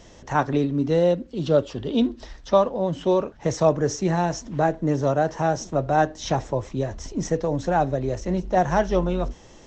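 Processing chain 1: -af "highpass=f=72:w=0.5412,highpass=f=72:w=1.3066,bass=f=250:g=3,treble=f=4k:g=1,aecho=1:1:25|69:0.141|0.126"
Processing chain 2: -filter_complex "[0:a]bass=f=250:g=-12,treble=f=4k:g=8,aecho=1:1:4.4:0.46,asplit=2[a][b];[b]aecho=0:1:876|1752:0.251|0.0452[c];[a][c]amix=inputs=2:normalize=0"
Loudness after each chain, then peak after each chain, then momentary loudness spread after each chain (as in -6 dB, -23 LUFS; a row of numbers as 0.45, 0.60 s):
-22.5, -24.5 LUFS; -5.0, -5.0 dBFS; 6, 8 LU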